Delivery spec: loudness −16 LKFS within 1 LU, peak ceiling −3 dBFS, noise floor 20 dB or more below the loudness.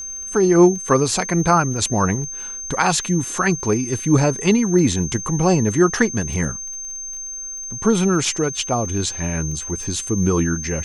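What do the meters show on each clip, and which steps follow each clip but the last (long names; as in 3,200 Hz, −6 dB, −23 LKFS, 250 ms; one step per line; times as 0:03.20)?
crackle rate 23 per second; interfering tone 6,300 Hz; level of the tone −28 dBFS; integrated loudness −19.5 LKFS; sample peak −1.5 dBFS; target loudness −16.0 LKFS
→ click removal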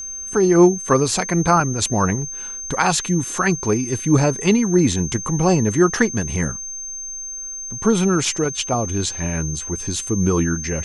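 crackle rate 0.092 per second; interfering tone 6,300 Hz; level of the tone −28 dBFS
→ notch filter 6,300 Hz, Q 30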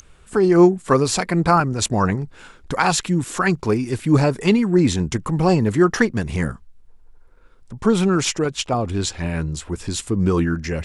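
interfering tone none found; integrated loudness −19.5 LKFS; sample peak −2.0 dBFS; target loudness −16.0 LKFS
→ level +3.5 dB
brickwall limiter −3 dBFS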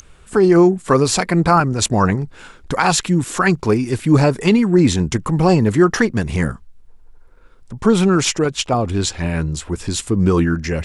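integrated loudness −16.5 LKFS; sample peak −3.0 dBFS; background noise floor −46 dBFS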